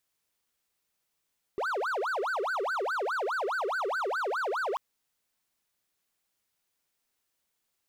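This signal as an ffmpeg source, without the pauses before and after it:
ffmpeg -f lavfi -i "aevalsrc='0.0501*(1-4*abs(mod((964.5*t-585.5/(2*PI*4.8)*sin(2*PI*4.8*t))+0.25,1)-0.5))':duration=3.19:sample_rate=44100" out.wav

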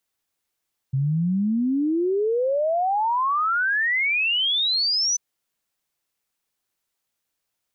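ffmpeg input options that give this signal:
ffmpeg -f lavfi -i "aevalsrc='0.112*clip(min(t,4.24-t)/0.01,0,1)*sin(2*PI*130*4.24/log(6100/130)*(exp(log(6100/130)*t/4.24)-1))':duration=4.24:sample_rate=44100" out.wav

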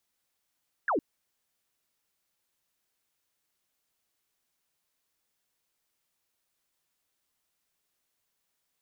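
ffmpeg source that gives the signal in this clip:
ffmpeg -f lavfi -i "aevalsrc='0.0631*clip(t/0.002,0,1)*clip((0.11-t)/0.002,0,1)*sin(2*PI*1800*0.11/log(250/1800)*(exp(log(250/1800)*t/0.11)-1))':duration=0.11:sample_rate=44100" out.wav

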